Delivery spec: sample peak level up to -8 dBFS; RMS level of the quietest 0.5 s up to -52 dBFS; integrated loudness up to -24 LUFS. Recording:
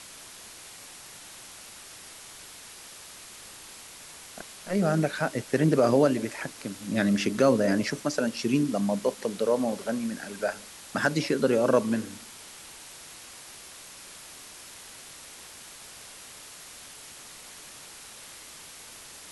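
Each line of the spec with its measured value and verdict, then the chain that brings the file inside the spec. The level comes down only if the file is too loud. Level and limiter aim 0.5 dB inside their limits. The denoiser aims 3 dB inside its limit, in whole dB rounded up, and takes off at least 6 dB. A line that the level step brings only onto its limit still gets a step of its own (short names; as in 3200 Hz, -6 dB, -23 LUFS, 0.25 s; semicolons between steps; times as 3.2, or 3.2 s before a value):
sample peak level -9.5 dBFS: OK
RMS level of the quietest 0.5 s -46 dBFS: fail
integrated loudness -26.5 LUFS: OK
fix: denoiser 9 dB, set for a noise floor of -46 dBFS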